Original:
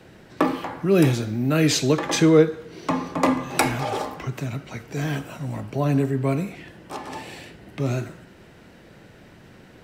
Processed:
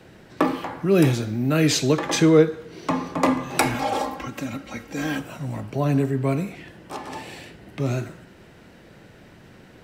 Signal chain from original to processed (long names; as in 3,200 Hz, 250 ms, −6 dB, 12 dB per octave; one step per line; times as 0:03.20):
0:03.74–0:05.20: comb filter 3.7 ms, depth 74%